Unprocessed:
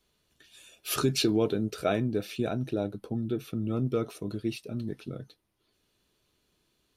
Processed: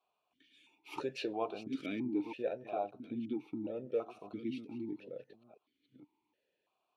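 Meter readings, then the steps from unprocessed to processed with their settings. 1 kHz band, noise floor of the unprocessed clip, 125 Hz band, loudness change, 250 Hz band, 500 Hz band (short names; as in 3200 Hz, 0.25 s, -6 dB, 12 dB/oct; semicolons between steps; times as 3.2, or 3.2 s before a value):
-4.0 dB, -74 dBFS, -21.0 dB, -9.5 dB, -8.5 dB, -8.0 dB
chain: reverse delay 0.465 s, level -10 dB; bell 920 Hz +13 dB 0.36 oct; vowel sequencer 3 Hz; gain +3 dB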